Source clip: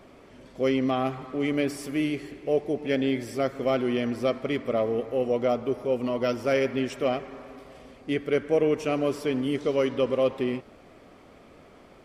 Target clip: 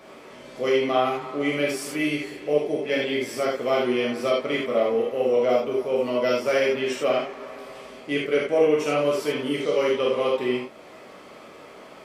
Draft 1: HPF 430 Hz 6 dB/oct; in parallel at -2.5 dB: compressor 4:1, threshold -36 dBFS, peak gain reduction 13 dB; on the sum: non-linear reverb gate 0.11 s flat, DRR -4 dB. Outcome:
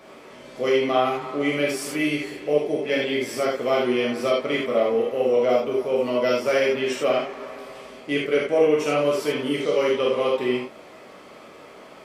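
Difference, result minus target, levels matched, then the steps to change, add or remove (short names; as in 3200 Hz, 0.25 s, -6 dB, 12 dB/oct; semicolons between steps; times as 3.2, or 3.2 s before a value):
compressor: peak gain reduction -8 dB
change: compressor 4:1, threshold -47 dBFS, peak gain reduction 21.5 dB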